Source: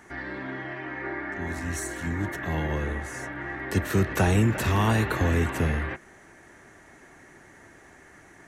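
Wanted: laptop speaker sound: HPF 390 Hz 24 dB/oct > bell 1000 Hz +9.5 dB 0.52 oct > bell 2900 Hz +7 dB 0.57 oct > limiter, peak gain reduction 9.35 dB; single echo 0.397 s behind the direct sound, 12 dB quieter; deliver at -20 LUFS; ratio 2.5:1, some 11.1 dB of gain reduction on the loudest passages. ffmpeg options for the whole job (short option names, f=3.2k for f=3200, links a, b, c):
-af "acompressor=threshold=-35dB:ratio=2.5,highpass=f=390:w=0.5412,highpass=f=390:w=1.3066,equalizer=f=1k:t=o:w=0.52:g=9.5,equalizer=f=2.9k:t=o:w=0.57:g=7,aecho=1:1:397:0.251,volume=17.5dB,alimiter=limit=-10.5dB:level=0:latency=1"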